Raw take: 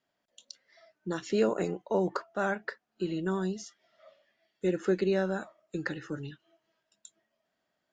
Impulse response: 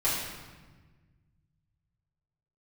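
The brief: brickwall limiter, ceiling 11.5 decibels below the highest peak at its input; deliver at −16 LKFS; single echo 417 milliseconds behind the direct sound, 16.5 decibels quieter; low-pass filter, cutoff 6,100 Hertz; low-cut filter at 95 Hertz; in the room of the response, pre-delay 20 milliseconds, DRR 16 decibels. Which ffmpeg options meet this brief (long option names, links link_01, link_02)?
-filter_complex "[0:a]highpass=95,lowpass=6100,alimiter=level_in=2.5dB:limit=-24dB:level=0:latency=1,volume=-2.5dB,aecho=1:1:417:0.15,asplit=2[link_01][link_02];[1:a]atrim=start_sample=2205,adelay=20[link_03];[link_02][link_03]afir=irnorm=-1:irlink=0,volume=-26.5dB[link_04];[link_01][link_04]amix=inputs=2:normalize=0,volume=22dB"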